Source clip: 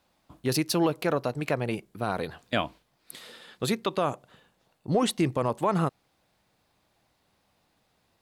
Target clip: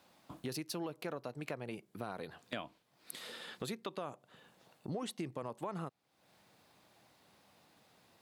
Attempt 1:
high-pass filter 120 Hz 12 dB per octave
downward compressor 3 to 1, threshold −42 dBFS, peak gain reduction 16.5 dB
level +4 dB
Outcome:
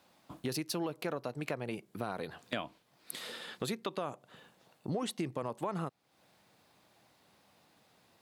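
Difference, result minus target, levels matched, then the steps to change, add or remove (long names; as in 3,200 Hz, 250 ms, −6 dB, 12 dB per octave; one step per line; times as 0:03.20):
downward compressor: peak gain reduction −4.5 dB
change: downward compressor 3 to 1, threshold −49 dBFS, peak gain reduction 21 dB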